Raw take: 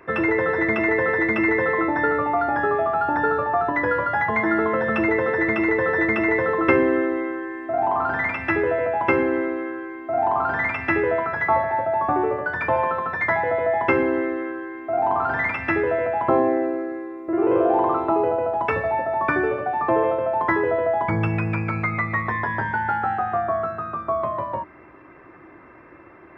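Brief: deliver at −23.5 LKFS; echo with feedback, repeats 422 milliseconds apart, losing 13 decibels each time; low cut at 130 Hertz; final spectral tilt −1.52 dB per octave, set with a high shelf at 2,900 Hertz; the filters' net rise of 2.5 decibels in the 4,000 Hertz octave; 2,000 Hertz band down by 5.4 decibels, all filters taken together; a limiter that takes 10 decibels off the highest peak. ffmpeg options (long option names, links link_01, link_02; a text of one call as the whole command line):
ffmpeg -i in.wav -af "highpass=130,equalizer=frequency=2000:width_type=o:gain=-8.5,highshelf=frequency=2900:gain=4.5,equalizer=frequency=4000:width_type=o:gain=3.5,alimiter=limit=-16dB:level=0:latency=1,aecho=1:1:422|844|1266:0.224|0.0493|0.0108,volume=1.5dB" out.wav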